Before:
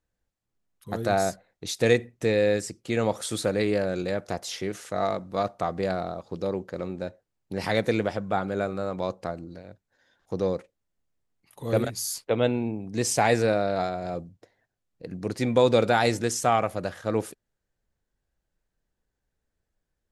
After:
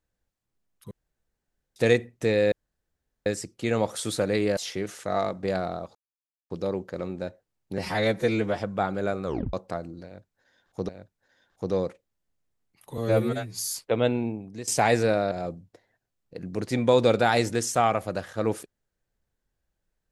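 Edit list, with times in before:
0.91–1.76 room tone
2.52 insert room tone 0.74 s
3.83–4.43 cut
5.29–5.78 cut
6.3 insert silence 0.55 s
7.58–8.11 stretch 1.5×
8.78 tape stop 0.29 s
9.58–10.42 loop, 2 plays
11.67–11.97 stretch 2×
12.66–13.07 fade out, to -16.5 dB
13.71–14 cut

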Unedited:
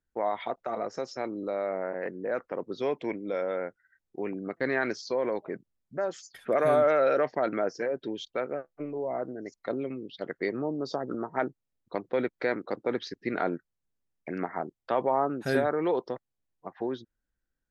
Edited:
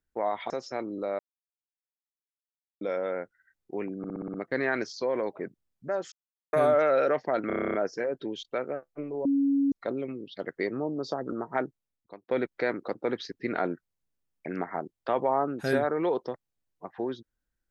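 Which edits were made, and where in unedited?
0.5–0.95 cut
1.64–3.26 mute
4.43 stutter 0.06 s, 7 plays
6.21–6.62 mute
7.56 stutter 0.03 s, 10 plays
9.07–9.54 bleep 278 Hz -21 dBFS
11.45–12.1 fade out

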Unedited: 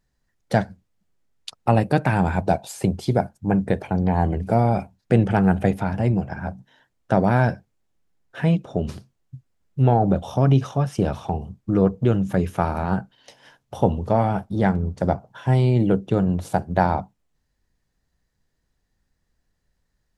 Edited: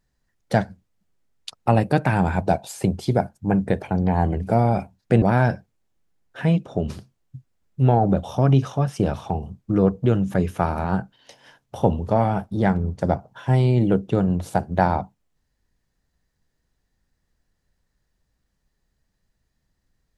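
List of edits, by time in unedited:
5.22–7.21 cut

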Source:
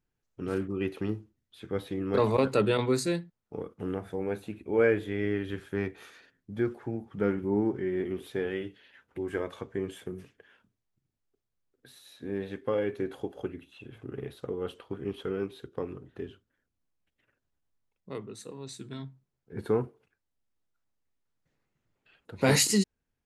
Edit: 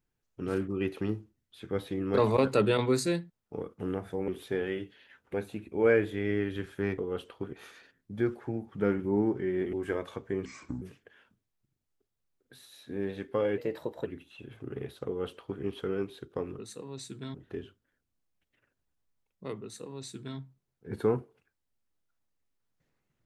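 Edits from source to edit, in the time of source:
8.12–9.18 move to 4.28
9.9–10.15 speed 68%
12.91–13.48 speed 117%
14.48–15.03 copy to 5.92
18.28–19.04 copy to 16

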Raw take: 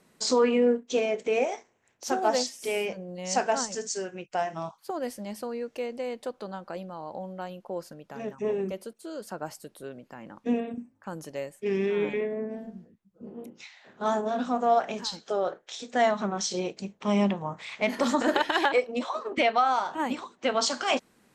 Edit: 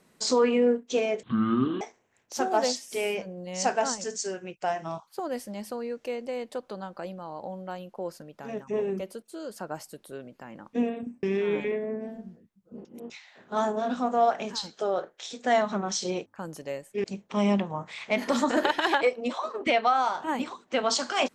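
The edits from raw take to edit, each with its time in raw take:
1.23–1.52 speed 50%
10.94–11.72 move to 16.75
13.34–13.59 reverse

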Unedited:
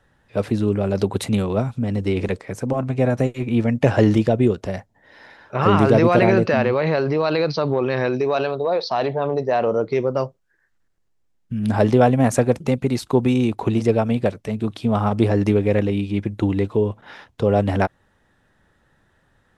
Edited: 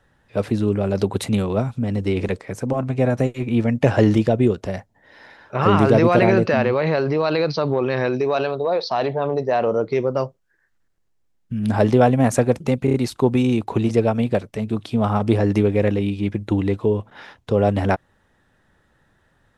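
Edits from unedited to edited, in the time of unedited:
12.85 stutter 0.03 s, 4 plays

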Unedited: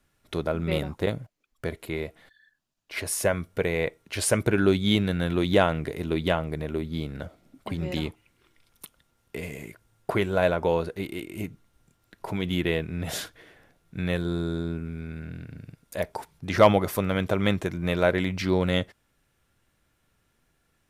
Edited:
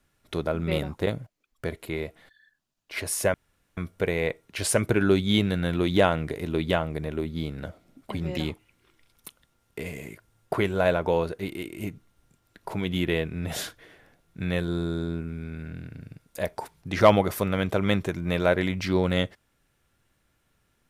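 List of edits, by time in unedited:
3.34 insert room tone 0.43 s

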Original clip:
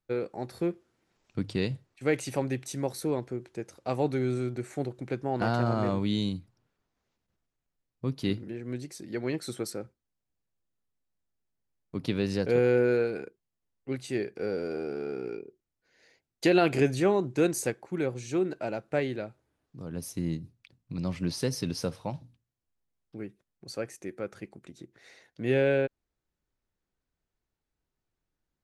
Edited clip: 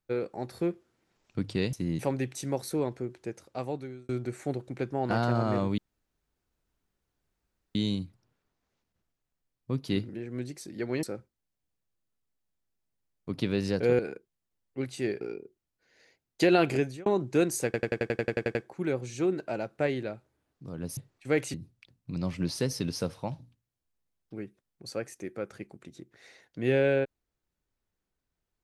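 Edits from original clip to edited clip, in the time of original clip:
1.73–2.3 swap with 20.1–20.36
3.58–4.4 fade out
6.09 insert room tone 1.97 s
9.37–9.69 cut
12.65–13.1 cut
14.32–15.24 cut
16.7–17.09 fade out
17.68 stutter 0.09 s, 11 plays

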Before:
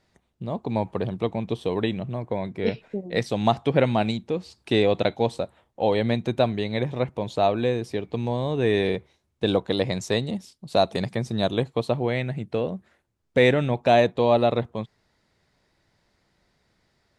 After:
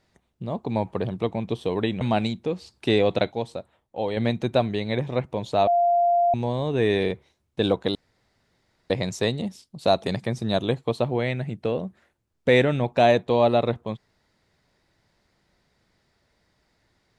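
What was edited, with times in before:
2.01–3.85 cut
5.16–6.01 gain -5.5 dB
7.51–8.18 bleep 695 Hz -16.5 dBFS
9.79 insert room tone 0.95 s

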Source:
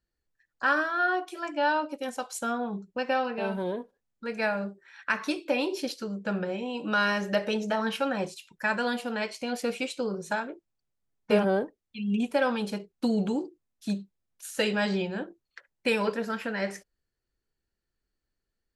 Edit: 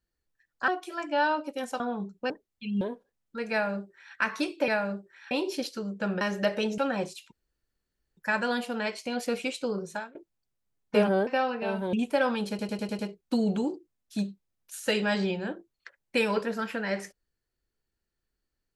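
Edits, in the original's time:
0.68–1.13 cut
2.25–2.53 cut
3.03–3.69 swap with 11.63–12.14
4.4–5.03 copy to 5.56
6.46–7.11 cut
7.68–7.99 cut
8.53 insert room tone 0.85 s
10.17–10.51 fade out, to -24 dB
12.7 stutter 0.10 s, 6 plays

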